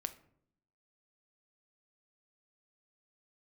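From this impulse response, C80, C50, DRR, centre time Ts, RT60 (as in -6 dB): 19.0 dB, 15.0 dB, 9.0 dB, 5 ms, 0.65 s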